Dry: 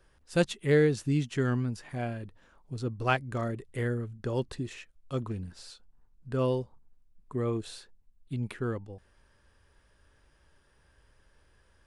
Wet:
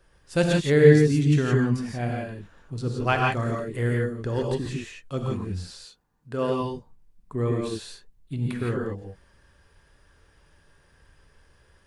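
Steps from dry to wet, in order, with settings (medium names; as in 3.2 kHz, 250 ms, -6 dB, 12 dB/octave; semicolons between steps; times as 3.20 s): 5.67–6.61 s: high-pass 210 Hz 6 dB/octave; gated-style reverb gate 190 ms rising, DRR -1 dB; trim +2.5 dB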